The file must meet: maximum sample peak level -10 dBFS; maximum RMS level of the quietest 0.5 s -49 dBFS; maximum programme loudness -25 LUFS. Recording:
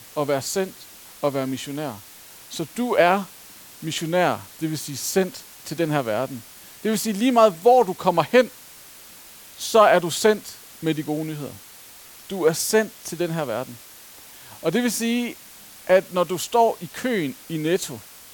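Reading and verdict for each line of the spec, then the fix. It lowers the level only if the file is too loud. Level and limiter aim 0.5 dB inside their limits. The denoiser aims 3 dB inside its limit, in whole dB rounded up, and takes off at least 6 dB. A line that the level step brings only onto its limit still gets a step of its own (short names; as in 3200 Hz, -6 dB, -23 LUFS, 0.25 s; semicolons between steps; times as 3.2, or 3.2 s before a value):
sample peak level -4.0 dBFS: fail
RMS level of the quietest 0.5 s -45 dBFS: fail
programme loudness -22.5 LUFS: fail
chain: denoiser 6 dB, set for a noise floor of -45 dBFS; gain -3 dB; limiter -10.5 dBFS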